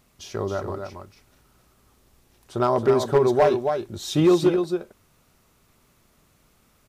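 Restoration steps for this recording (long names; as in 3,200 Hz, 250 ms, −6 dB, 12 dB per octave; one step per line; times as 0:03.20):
clipped peaks rebuilt −11 dBFS
echo removal 272 ms −6.5 dB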